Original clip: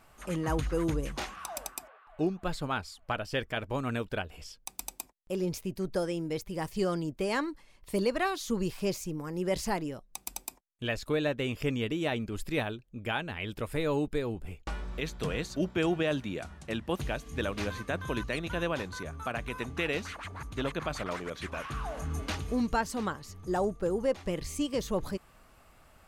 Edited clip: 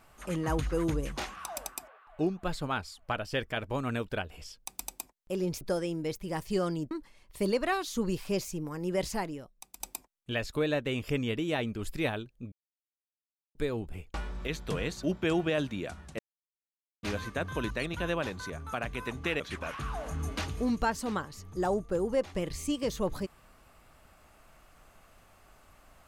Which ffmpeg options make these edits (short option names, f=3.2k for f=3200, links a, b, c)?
-filter_complex "[0:a]asplit=9[a][b][c][d][e][f][g][h][i];[a]atrim=end=5.612[j];[b]atrim=start=5.868:end=7.172[k];[c]atrim=start=7.438:end=10.33,asetpts=PTS-STARTPTS,afade=t=out:st=2.032:d=0.86:silence=0.251189[l];[d]atrim=start=10.33:end=13.05,asetpts=PTS-STARTPTS,afade=t=in:d=0.004:c=hsin:silence=0.251189,afade=t=out:st=2.716:d=0.004:c=hsin[m];[e]atrim=start=13.05:end=14.08,asetpts=PTS-STARTPTS,volume=0[n];[f]atrim=start=14.08:end=16.72,asetpts=PTS-STARTPTS,afade=t=in:d=0.004:c=hsin,afade=t=out:st=2.636:d=0.004:c=hsin[o];[g]atrim=start=16.72:end=17.56,asetpts=PTS-STARTPTS,volume=0[p];[h]atrim=start=17.56:end=19.932,asetpts=PTS-STARTPTS,afade=t=in:d=0.004:c=hsin[q];[i]atrim=start=21.308[r];[j][k]acrossfade=d=0.004:c1=hsin:c2=hsin[s];[l][m][n][o][p][q]concat=n=6:v=0:a=1[t];[s][t]acrossfade=d=0.004:c1=hsin:c2=hsin[u];[u][r]acrossfade=d=0.004:c1=hsin:c2=hsin"